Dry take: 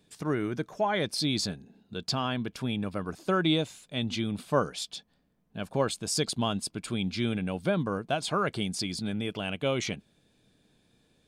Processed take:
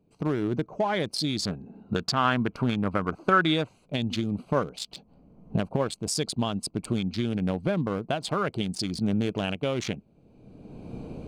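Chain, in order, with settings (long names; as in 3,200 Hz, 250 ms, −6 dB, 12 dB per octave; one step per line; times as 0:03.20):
adaptive Wiener filter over 25 samples
camcorder AGC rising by 27 dB per second
0:01.45–0:03.69: parametric band 1,400 Hz +11 dB 1.2 octaves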